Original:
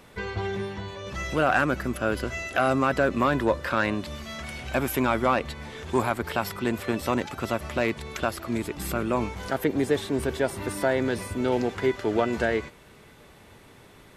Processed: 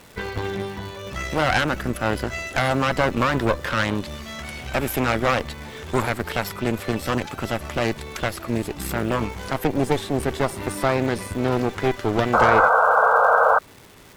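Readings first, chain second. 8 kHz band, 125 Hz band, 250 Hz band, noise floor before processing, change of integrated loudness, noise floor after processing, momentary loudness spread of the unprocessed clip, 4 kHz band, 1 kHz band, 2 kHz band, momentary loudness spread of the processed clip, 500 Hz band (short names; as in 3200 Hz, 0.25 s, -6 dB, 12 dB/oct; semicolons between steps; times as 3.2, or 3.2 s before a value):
+4.0 dB, +5.5 dB, +2.0 dB, -52 dBFS, +5.0 dB, -47 dBFS, 10 LU, +6.0 dB, +8.0 dB, +6.0 dB, 13 LU, +3.5 dB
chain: crackle 560/s -40 dBFS; added harmonics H 2 -7 dB, 3 -13 dB, 5 -18 dB, 6 -20 dB, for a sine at -10.5 dBFS; painted sound noise, 12.33–13.59, 440–1600 Hz -19 dBFS; gain +3 dB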